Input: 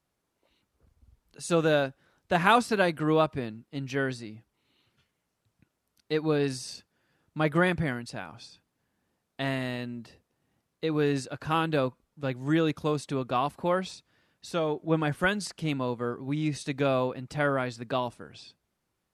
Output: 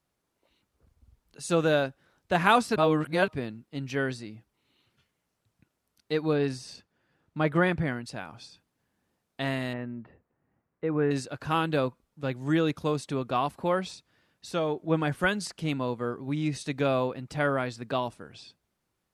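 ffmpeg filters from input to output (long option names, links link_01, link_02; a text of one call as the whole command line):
ffmpeg -i in.wav -filter_complex "[0:a]asettb=1/sr,asplit=3[link_01][link_02][link_03];[link_01]atrim=end=6.334[link_04];[link_02]atrim=start=6.33:end=8.04,asetpts=PTS-STARTPTS,afade=type=in:duration=0.004:curve=qsin,afade=type=out:start_time=1.706:duration=0.004:curve=qsin,aemphasis=mode=reproduction:type=cd[link_05];[link_03]atrim=start=8.036[link_06];[link_04][link_05]acrossfade=duration=0.004:curve1=hsin:curve2=qsin[link_07];[link_07][link_06]acrossfade=duration=0.004:curve1=qsin:curve2=hsin,asettb=1/sr,asplit=3[link_08][link_09][link_10];[link_08]atrim=end=9.734[link_11];[link_09]atrim=start=9.73:end=11.11,asetpts=PTS-STARTPTS,afade=type=in:duration=0.004:curve=qsin,afade=type=out:start_time=1.376:duration=0.004:curve=qsin,lowpass=frequency=2000:width=0.5412,lowpass=frequency=2000:width=1.3066[link_12];[link_10]atrim=start=11.106[link_13];[link_11][link_12]acrossfade=duration=0.004:curve1=hsin:curve2=qsin[link_14];[link_14][link_13]acrossfade=duration=0.004:curve1=qsin:curve2=hsin,asplit=3[link_15][link_16][link_17];[link_15]atrim=end=2.762[link_18];[link_16]atrim=start=2.758:end=3.282,asetpts=PTS-STARTPTS,areverse[link_19];[link_17]atrim=start=3.278[link_20];[link_18][link_19]acrossfade=duration=0.004:curve1=hsin:curve2=hsin[link_21];[link_21][link_20]acrossfade=duration=0.004:curve1=hsin:curve2=hsin" out.wav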